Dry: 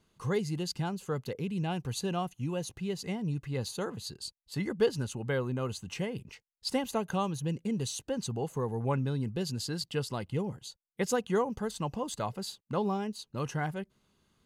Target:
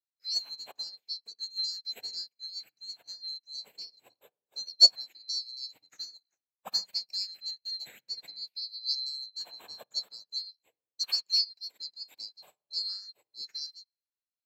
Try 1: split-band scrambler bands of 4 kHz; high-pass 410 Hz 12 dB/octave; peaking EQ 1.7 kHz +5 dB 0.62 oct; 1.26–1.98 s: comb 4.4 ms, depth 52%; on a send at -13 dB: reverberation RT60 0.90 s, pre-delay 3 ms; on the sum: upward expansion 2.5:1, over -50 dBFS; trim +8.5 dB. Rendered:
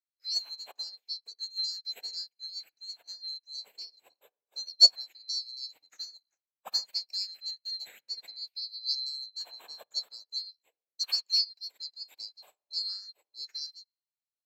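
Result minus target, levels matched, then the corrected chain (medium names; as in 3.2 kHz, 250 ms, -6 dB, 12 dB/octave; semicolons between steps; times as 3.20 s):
250 Hz band -6.5 dB
split-band scrambler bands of 4 kHz; high-pass 200 Hz 12 dB/octave; peaking EQ 1.7 kHz +5 dB 0.62 oct; 1.26–1.98 s: comb 4.4 ms, depth 52%; on a send at -13 dB: reverberation RT60 0.90 s, pre-delay 3 ms; on the sum: upward expansion 2.5:1, over -50 dBFS; trim +8.5 dB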